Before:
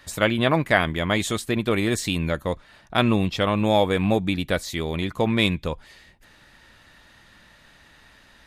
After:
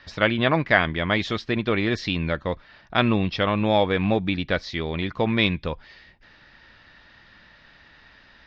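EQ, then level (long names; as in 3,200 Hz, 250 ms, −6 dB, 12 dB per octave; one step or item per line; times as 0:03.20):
elliptic low-pass filter 5,300 Hz, stop band 50 dB
parametric band 1,700 Hz +2.5 dB 0.77 octaves
0.0 dB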